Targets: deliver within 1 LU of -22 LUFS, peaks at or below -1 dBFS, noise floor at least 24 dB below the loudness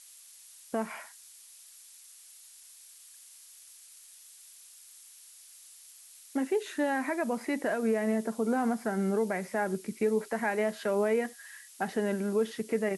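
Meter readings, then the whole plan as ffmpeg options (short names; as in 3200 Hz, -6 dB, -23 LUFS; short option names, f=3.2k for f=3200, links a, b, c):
noise floor -54 dBFS; noise floor target -55 dBFS; loudness -31.0 LUFS; peak -18.0 dBFS; loudness target -22.0 LUFS
-> -af "afftdn=nr=6:nf=-54"
-af "volume=9dB"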